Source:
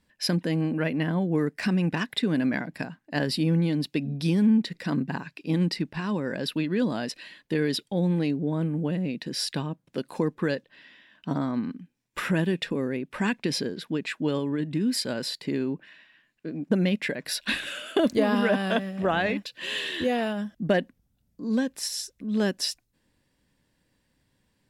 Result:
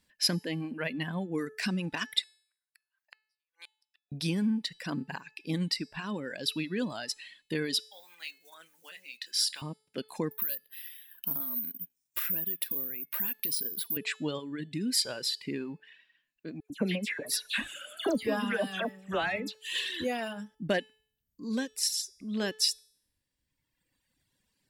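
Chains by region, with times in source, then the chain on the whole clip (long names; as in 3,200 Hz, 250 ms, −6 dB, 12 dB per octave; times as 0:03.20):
0:02.22–0:04.12: high-pass filter 1,000 Hz 24 dB per octave + downward compressor 10 to 1, threshold −38 dBFS + gate with flip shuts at −34 dBFS, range −39 dB
0:07.80–0:09.62: one scale factor per block 7 bits + high-pass filter 1,500 Hz + double-tracking delay 25 ms −10.5 dB
0:10.31–0:13.97: high-shelf EQ 2,600 Hz +5.5 dB + downward compressor 5 to 1, threshold −36 dBFS + bad sample-rate conversion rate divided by 3×, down filtered, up zero stuff
0:16.60–0:19.75: parametric band 4,300 Hz −4.5 dB 1.3 octaves + all-pass dispersion lows, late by 100 ms, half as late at 2,200 Hz
whole clip: reverb reduction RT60 1.6 s; high-shelf EQ 2,200 Hz +10.5 dB; hum removal 433.3 Hz, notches 29; level −6.5 dB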